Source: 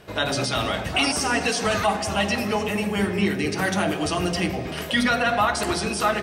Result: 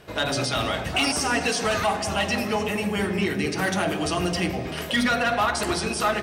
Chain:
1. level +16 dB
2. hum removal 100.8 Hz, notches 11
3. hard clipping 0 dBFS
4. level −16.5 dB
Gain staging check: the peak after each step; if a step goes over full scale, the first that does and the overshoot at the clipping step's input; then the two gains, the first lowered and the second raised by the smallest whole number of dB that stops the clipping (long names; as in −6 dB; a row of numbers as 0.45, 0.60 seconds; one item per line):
+6.5, +6.5, 0.0, −16.5 dBFS
step 1, 6.5 dB
step 1 +9 dB, step 4 −9.5 dB